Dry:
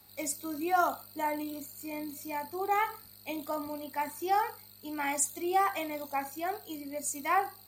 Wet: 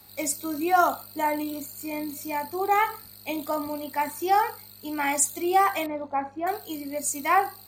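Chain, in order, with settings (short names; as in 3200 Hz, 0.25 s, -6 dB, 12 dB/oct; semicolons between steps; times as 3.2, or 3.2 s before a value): 5.86–6.47 LPF 1400 Hz 12 dB/oct; gain +6.5 dB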